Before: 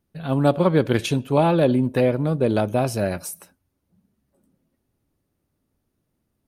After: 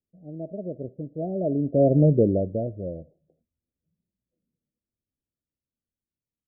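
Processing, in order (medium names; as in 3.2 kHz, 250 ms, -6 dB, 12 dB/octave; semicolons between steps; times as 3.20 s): Doppler pass-by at 2.01 s, 39 m/s, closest 5.6 m; steep low-pass 680 Hz 96 dB/octave; trim +5.5 dB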